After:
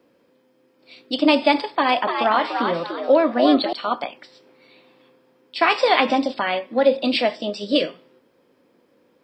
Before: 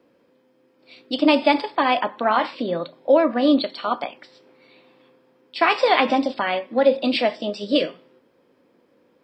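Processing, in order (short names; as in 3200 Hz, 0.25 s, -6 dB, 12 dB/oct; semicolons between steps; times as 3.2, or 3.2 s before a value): high shelf 4600 Hz +5 dB; 1.59–3.73 frequency-shifting echo 0.293 s, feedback 31%, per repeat +87 Hz, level -5.5 dB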